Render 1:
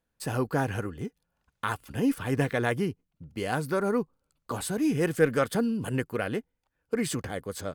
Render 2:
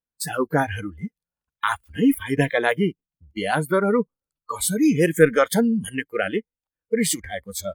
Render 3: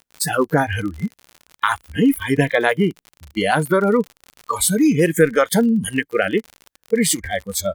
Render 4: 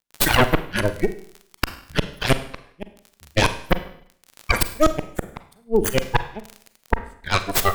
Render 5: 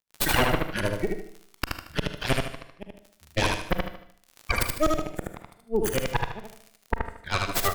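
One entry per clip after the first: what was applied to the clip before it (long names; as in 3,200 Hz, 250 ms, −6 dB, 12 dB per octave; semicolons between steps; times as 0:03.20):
noise reduction from a noise print of the clip's start 24 dB; high-shelf EQ 7,600 Hz +7 dB; level +8 dB
downward compressor 2 to 1, threshold −23 dBFS, peak gain reduction 8.5 dB; surface crackle 57 per second −35 dBFS; level +7.5 dB
gate with flip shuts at −8 dBFS, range −34 dB; harmonic generator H 3 −14 dB, 8 −8 dB, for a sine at −3 dBFS; four-comb reverb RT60 0.62 s, combs from 33 ms, DRR 10.5 dB
repeating echo 76 ms, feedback 37%, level −3 dB; level −7 dB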